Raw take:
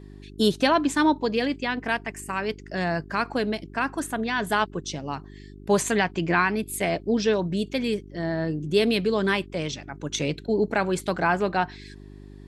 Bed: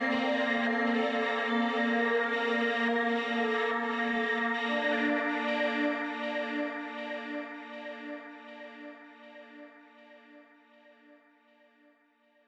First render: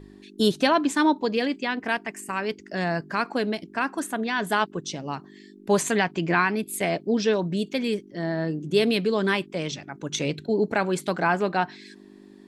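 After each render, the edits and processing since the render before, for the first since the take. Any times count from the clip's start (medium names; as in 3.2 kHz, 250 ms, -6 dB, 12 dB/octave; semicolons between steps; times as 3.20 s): de-hum 50 Hz, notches 3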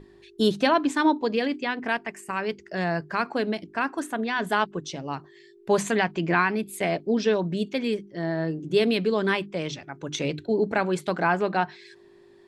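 treble shelf 6.1 kHz -8.5 dB; hum notches 50/100/150/200/250/300 Hz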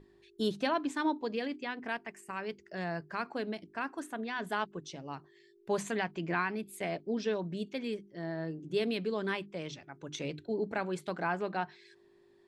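trim -10 dB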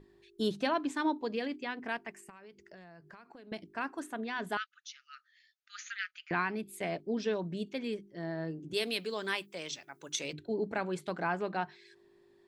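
2.29–3.52 s: compression 16:1, threshold -48 dBFS; 4.57–6.31 s: brick-wall FIR band-pass 1.2–7.1 kHz; 8.73–10.33 s: RIAA curve recording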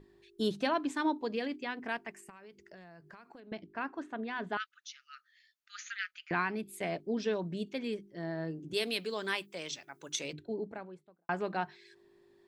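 3.40–4.60 s: distance through air 180 m; 10.09–11.29 s: studio fade out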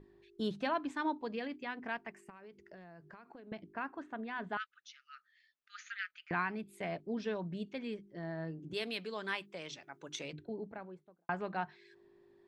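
low-pass 2 kHz 6 dB/octave; dynamic bell 370 Hz, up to -6 dB, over -46 dBFS, Q 0.85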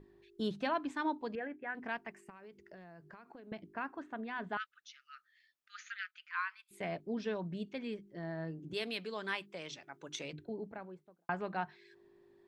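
1.35–1.75 s: cabinet simulation 120–2000 Hz, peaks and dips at 240 Hz -7 dB, 700 Hz +3 dB, 1.1 kHz -9 dB, 1.6 kHz +7 dB; 5.94–6.71 s: rippled Chebyshev high-pass 1 kHz, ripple 3 dB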